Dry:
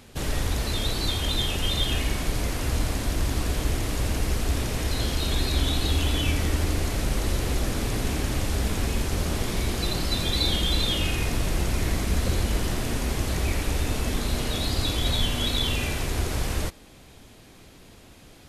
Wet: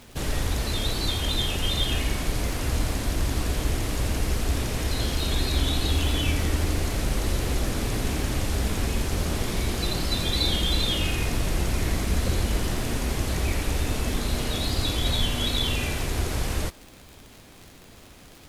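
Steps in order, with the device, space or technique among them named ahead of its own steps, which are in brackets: vinyl LP (crackle 77/s -35 dBFS; pink noise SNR 31 dB)

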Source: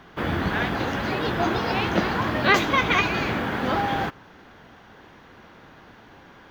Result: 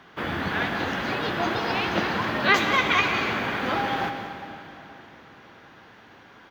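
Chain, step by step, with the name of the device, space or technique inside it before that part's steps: PA in a hall (HPF 110 Hz 6 dB/oct; bell 2600 Hz +4 dB 2.9 oct; echo 0.181 s -11.5 dB; reverb RT60 3.5 s, pre-delay 81 ms, DRR 7.5 dB); gain -4 dB

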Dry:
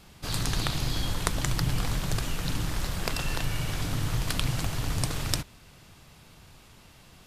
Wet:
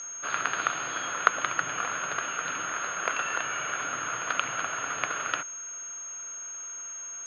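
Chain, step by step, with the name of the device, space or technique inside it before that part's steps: toy sound module (decimation joined by straight lines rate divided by 4×; pulse-width modulation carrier 6500 Hz; speaker cabinet 750–4300 Hz, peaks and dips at 860 Hz -8 dB, 1400 Hz +9 dB, 2000 Hz -5 dB, 3800 Hz -6 dB); gain +7.5 dB

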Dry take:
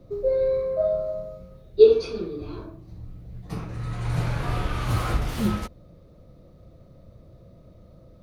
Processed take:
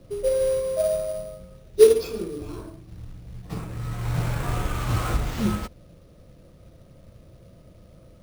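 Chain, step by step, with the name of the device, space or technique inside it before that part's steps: early companding sampler (sample-rate reducer 9700 Hz, jitter 0%; companded quantiser 6-bit)

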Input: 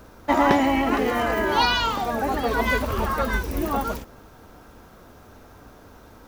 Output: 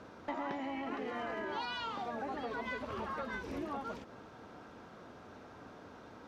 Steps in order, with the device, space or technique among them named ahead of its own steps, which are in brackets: AM radio (BPF 130–4500 Hz; compressor 5:1, threshold -34 dBFS, peak gain reduction 18.5 dB; soft clip -23 dBFS, distortion -27 dB); gain -3.5 dB

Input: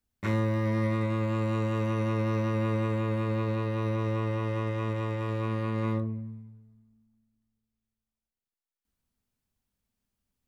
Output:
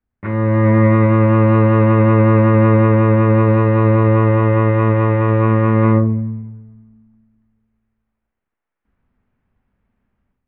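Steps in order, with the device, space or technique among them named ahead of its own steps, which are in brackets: action camera in a waterproof case (LPF 2100 Hz 24 dB/oct; AGC gain up to 13 dB; gain +4 dB; AAC 96 kbps 48000 Hz)

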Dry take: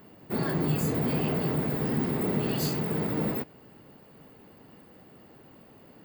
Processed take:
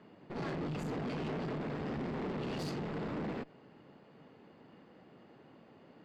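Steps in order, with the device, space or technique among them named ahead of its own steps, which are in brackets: valve radio (BPF 130–4300 Hz; tube stage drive 34 dB, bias 0.7; core saturation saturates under 130 Hz)

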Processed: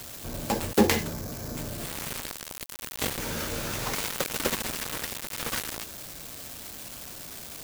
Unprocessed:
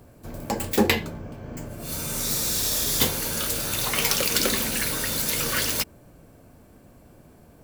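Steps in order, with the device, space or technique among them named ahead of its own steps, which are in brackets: 3.18–3.95 air absorption 130 m; budget class-D amplifier (switching dead time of 0.16 ms; switching spikes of -21.5 dBFS)

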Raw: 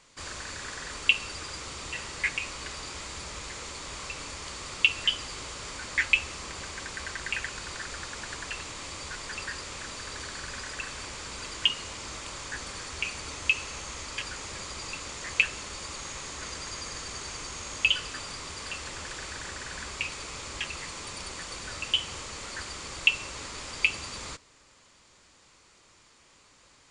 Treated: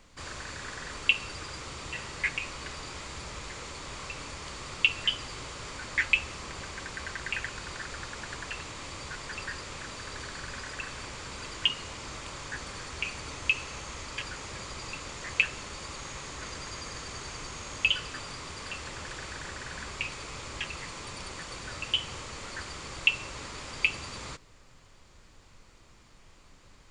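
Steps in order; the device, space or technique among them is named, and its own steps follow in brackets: car interior (bell 130 Hz +4 dB 0.59 oct; high shelf 4500 Hz -6.5 dB; brown noise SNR 20 dB)

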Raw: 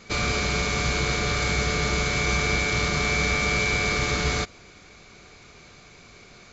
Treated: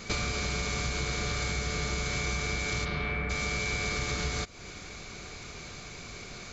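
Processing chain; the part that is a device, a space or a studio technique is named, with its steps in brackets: 2.84–3.29 LPF 4500 Hz -> 2200 Hz 24 dB/oct; ASMR close-microphone chain (low shelf 130 Hz +4.5 dB; compressor 6:1, threshold -34 dBFS, peak gain reduction 15 dB; high shelf 6400 Hz +7.5 dB); gain +4 dB

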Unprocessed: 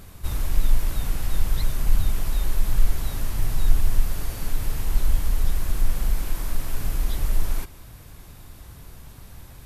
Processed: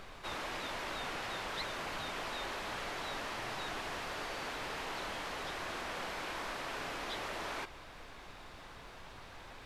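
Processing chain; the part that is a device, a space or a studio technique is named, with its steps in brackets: aircraft cabin announcement (BPF 490–3600 Hz; soft clip -33 dBFS, distortion -24 dB; brown noise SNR 12 dB); gain +3.5 dB

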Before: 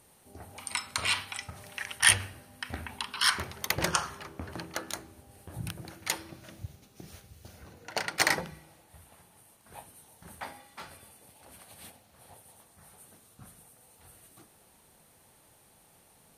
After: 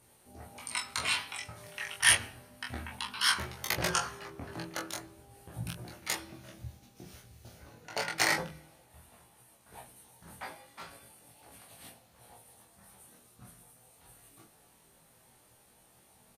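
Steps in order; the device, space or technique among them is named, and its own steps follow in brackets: double-tracked vocal (doubler 25 ms -4 dB; chorus 0.31 Hz, delay 16 ms, depth 2.1 ms)

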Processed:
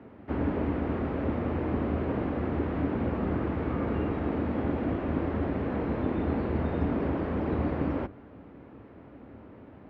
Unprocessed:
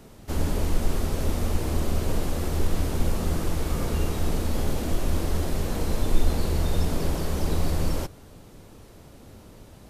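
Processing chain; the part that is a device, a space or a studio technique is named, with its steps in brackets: sub-octave bass pedal (octaver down 2 oct, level +1 dB; speaker cabinet 75–2200 Hz, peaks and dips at 89 Hz -7 dB, 150 Hz -7 dB, 280 Hz +6 dB)

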